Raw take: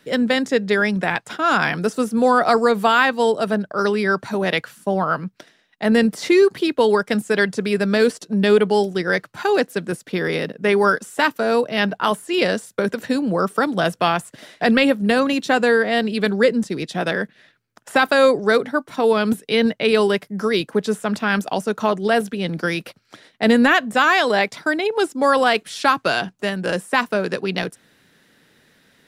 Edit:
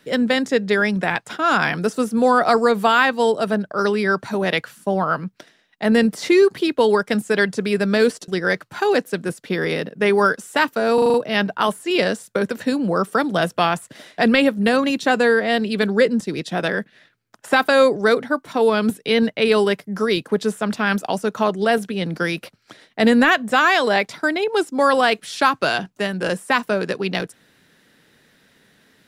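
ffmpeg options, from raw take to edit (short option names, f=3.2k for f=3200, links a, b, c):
-filter_complex "[0:a]asplit=7[a][b][c][d][e][f][g];[a]atrim=end=8.282[h];[b]atrim=start=8.908:end=11.612[i];[c]atrim=start=11.568:end=11.612[j];[d]atrim=start=11.568:end=11.612[k];[e]atrim=start=11.568:end=11.612[l];[f]atrim=start=11.568:end=11.612[m];[g]atrim=start=11.568[n];[h][i]acrossfade=d=0.004:c1=hsin:c2=hsin[o];[o][j]acrossfade=d=0.004:c1=hsin:c2=hsin[p];[p][k]acrossfade=d=0.004:c1=hsin:c2=hsin[q];[q][l]acrossfade=d=0.004:c1=hsin:c2=hsin[r];[r][m]acrossfade=d=0.004:c1=hsin:c2=hsin[s];[s][n]acrossfade=d=0.004:c1=hsin:c2=hsin"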